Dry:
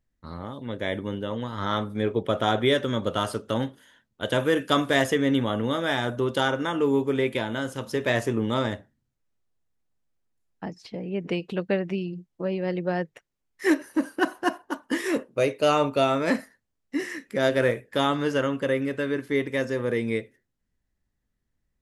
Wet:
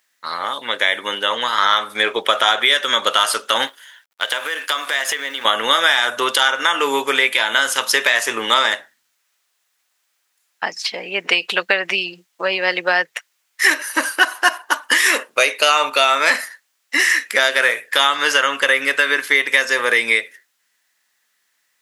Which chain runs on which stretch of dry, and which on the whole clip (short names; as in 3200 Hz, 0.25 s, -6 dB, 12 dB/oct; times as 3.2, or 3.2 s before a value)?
3.67–5.45 G.711 law mismatch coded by A + tone controls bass -6 dB, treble -3 dB + compressor 16:1, threshold -33 dBFS
whole clip: HPF 1400 Hz 12 dB/oct; compressor 6:1, threshold -35 dBFS; maximiser +25 dB; gain -1 dB